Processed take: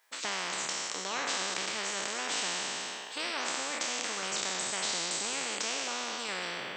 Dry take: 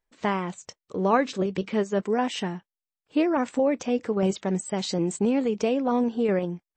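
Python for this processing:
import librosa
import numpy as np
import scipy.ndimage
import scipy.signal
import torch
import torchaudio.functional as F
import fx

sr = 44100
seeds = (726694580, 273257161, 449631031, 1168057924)

y = fx.spec_trails(x, sr, decay_s=1.2)
y = scipy.signal.sosfilt(scipy.signal.butter(2, 910.0, 'highpass', fs=sr, output='sos'), y)
y = fx.spectral_comp(y, sr, ratio=4.0)
y = y * librosa.db_to_amplitude(-3.5)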